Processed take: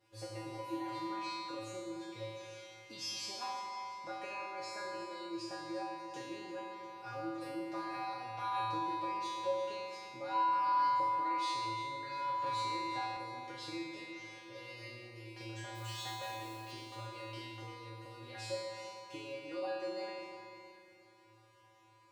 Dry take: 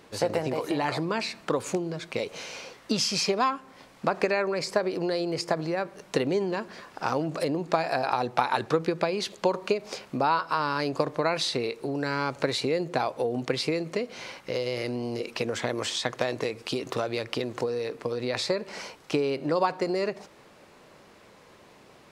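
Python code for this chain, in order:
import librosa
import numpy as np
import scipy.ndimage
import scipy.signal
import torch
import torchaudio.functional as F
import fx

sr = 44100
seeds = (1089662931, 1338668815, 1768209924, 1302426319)

y = fx.high_shelf(x, sr, hz=9700.0, db=11.0, at=(17.94, 18.54))
y = fx.comb_fb(y, sr, f0_hz=110.0, decay_s=1.2, harmonics='odd', damping=0.0, mix_pct=100)
y = fx.mod_noise(y, sr, seeds[0], snr_db=14, at=(15.74, 16.71), fade=0.02)
y = fx.echo_feedback(y, sr, ms=347, feedback_pct=47, wet_db=-13)
y = fx.rev_spring(y, sr, rt60_s=2.4, pass_ms=(44,), chirp_ms=30, drr_db=2.0)
y = fx.band_squash(y, sr, depth_pct=40, at=(12.46, 13.17))
y = F.gain(torch.from_numpy(y), 4.5).numpy()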